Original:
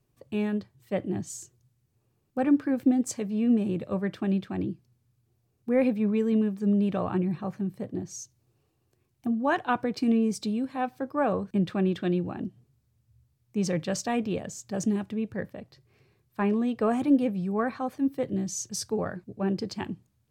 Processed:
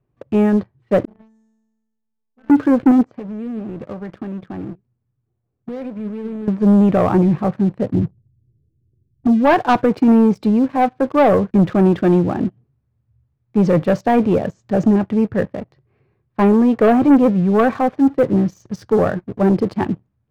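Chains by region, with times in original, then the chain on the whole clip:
0:01.05–0:02.50: low-shelf EQ 120 Hz +9.5 dB + tuned comb filter 220 Hz, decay 1.4 s, mix 100%
0:03.04–0:06.48: downward compressor 8 to 1, threshold −33 dBFS + flanger 1.6 Hz, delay 3.3 ms, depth 4.4 ms, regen +80% + high-frequency loss of the air 170 metres
0:07.92–0:09.27: Gaussian smoothing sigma 24 samples + low-shelf EQ 180 Hz +12 dB
whole clip: low-pass filter 1,700 Hz 12 dB per octave; dynamic equaliser 580 Hz, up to +3 dB, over −37 dBFS, Q 1; leveller curve on the samples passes 2; level +6.5 dB

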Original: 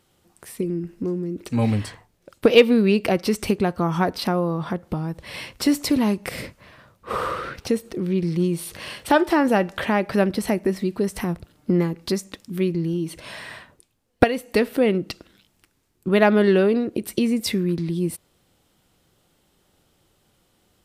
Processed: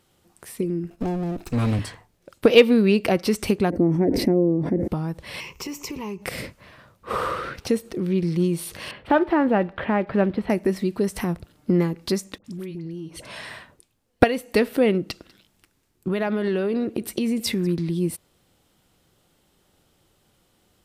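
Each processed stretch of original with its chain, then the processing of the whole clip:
0:00.90–0:01.79: lower of the sound and its delayed copy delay 0.76 ms + downward expander −44 dBFS + multiband upward and downward compressor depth 40%
0:03.70–0:04.88: drawn EQ curve 190 Hz 0 dB, 280 Hz +12 dB, 600 Hz −4 dB, 1,300 Hz −27 dB, 2,000 Hz −8 dB, 3,200 Hz −27 dB, 5,700 Hz −17 dB + level that may fall only so fast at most 46 dB per second
0:05.40–0:06.22: EQ curve with evenly spaced ripples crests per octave 0.76, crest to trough 13 dB + downward compressor 2.5 to 1, threshold −34 dBFS
0:08.91–0:10.50: one scale factor per block 5 bits + high-frequency loss of the air 440 metres
0:12.38–0:13.50: low-pass filter 12,000 Hz + downward compressor 5 to 1, threshold −31 dBFS + all-pass dispersion highs, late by 66 ms, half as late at 1,100 Hz
0:15.08–0:17.67: downward compressor 10 to 1, threshold −19 dBFS + single-tap delay 195 ms −22.5 dB
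whole clip: no processing

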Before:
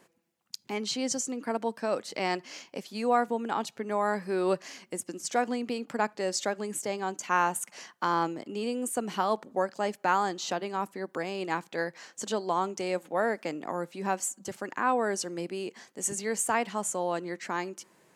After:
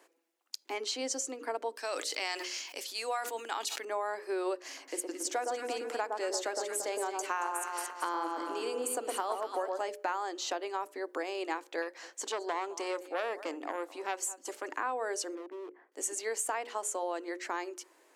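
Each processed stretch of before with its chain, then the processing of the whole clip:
0:01.76–0:03.85: tilt shelving filter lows −8.5 dB, about 1,500 Hz + level that may fall only so fast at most 65 dB per second
0:04.65–0:09.83: high-shelf EQ 8,900 Hz +5 dB + delay that swaps between a low-pass and a high-pass 113 ms, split 1,300 Hz, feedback 61%, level −3 dB
0:11.82–0:14.77: single-tap delay 211 ms −20.5 dB + saturating transformer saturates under 1,500 Hz
0:15.35–0:15.92: mu-law and A-law mismatch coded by A + low-pass filter 1,700 Hz 24 dB per octave + hard clipping −38.5 dBFS
whole clip: elliptic high-pass filter 290 Hz, stop band 40 dB; mains-hum notches 60/120/180/240/300/360/420/480/540/600 Hz; downward compressor 6 to 1, threshold −30 dBFS

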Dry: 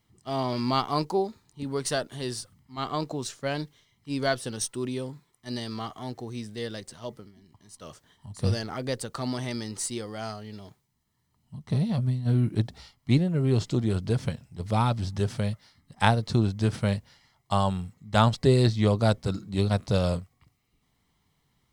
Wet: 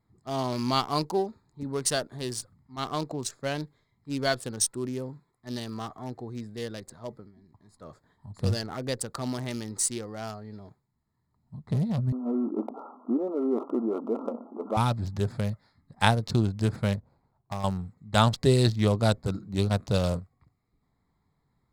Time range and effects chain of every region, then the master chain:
0:12.12–0:14.77: one scale factor per block 5 bits + linear-phase brick-wall band-pass 220–1,400 Hz + envelope flattener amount 50%
0:16.95–0:17.64: running median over 25 samples + downward compressor 3 to 1, threshold −29 dBFS
whole clip: adaptive Wiener filter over 15 samples; high-shelf EQ 4,000 Hz +9 dB; level −1 dB

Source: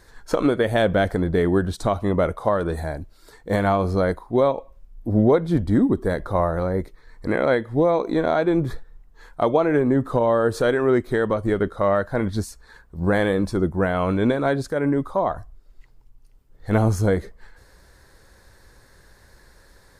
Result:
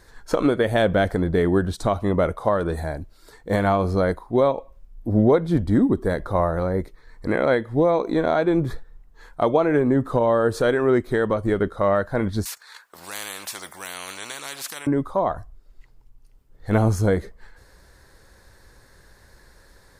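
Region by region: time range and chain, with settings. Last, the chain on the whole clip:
0:12.45–0:14.87: noise gate −45 dBFS, range −13 dB + high-pass filter 1,400 Hz + every bin compressed towards the loudest bin 4 to 1
whole clip: no processing

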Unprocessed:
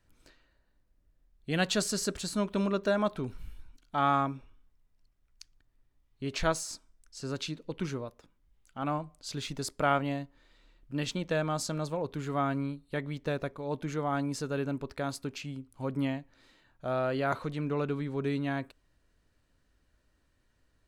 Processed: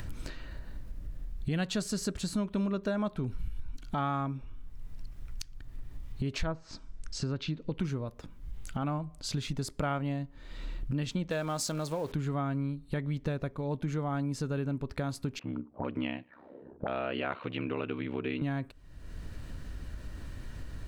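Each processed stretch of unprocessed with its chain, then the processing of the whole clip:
0:06.44–0:07.73: treble cut that deepens with the level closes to 1,400 Hz, closed at −26.5 dBFS + low-pass filter 7,000 Hz
0:11.30–0:12.12: converter with a step at zero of −45 dBFS + bass and treble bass −10 dB, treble +5 dB
0:15.39–0:18.42: high-pass filter 260 Hz + ring modulation 33 Hz + envelope-controlled low-pass 360–2,800 Hz up, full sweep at −39 dBFS
whole clip: upward compression, threshold −33 dBFS; bass and treble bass +9 dB, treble −2 dB; downward compressor 3 to 1, threshold −33 dBFS; level +2.5 dB

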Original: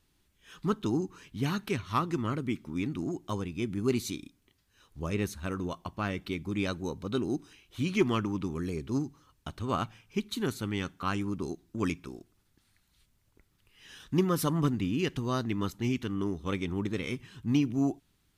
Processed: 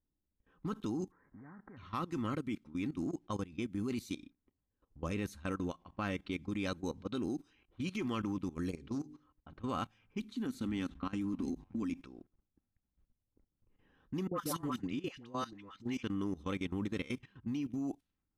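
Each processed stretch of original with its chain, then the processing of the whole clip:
0:01.10–0:01.76: spectral envelope flattened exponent 0.6 + Butterworth low-pass 2,000 Hz 96 dB per octave + downward compressor 5 to 1, threshold −37 dBFS
0:08.76–0:09.63: mains-hum notches 50/100/150/200/250/300/350/400/450 Hz + highs frequency-modulated by the lows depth 0.12 ms
0:10.21–0:12.01: downward compressor, threshold −32 dBFS + parametric band 250 Hz +12.5 dB 0.48 octaves + echo with shifted repeats 293 ms, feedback 44%, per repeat −150 Hz, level −19.5 dB
0:14.27–0:16.03: low-shelf EQ 350 Hz −8 dB + all-pass dispersion highs, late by 97 ms, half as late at 810 Hz
whole clip: low-pass that shuts in the quiet parts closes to 620 Hz, open at −29 dBFS; comb filter 3.8 ms, depth 31%; output level in coarse steps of 17 dB; level −1.5 dB

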